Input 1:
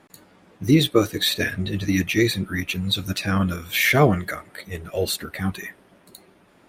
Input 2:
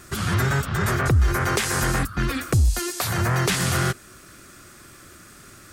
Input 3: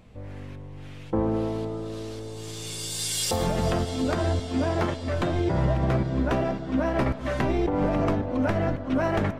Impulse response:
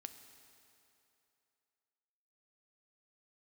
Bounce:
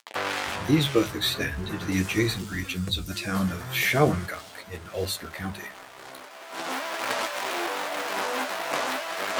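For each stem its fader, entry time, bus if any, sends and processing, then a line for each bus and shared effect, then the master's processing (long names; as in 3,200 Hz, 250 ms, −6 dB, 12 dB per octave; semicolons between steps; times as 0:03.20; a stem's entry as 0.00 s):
−1.0 dB, 0.00 s, no send, mains-hum notches 50/100/150/200 Hz; noise gate −49 dBFS, range −37 dB
−10.0 dB, 0.35 s, no send, downward compressor, threshold −21 dBFS, peak gain reduction 6.5 dB
+1.5 dB, 0.00 s, no send, fuzz pedal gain 45 dB, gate −45 dBFS; high-pass filter 750 Hz 12 dB per octave; compressor whose output falls as the input rises −27 dBFS, ratio −1; automatic ducking −17 dB, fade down 1.20 s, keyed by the first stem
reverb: not used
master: flanger 0.42 Hz, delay 8.4 ms, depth 7.9 ms, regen +48%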